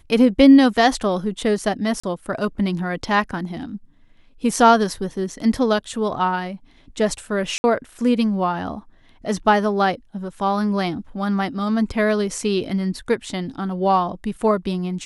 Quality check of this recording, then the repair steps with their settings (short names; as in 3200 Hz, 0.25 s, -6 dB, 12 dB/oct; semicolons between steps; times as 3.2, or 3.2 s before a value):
2–2.04 gap 35 ms
7.58–7.64 gap 60 ms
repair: interpolate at 2, 35 ms; interpolate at 7.58, 60 ms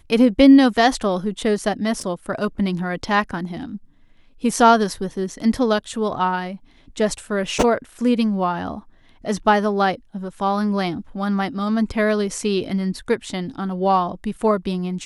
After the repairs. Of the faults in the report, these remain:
none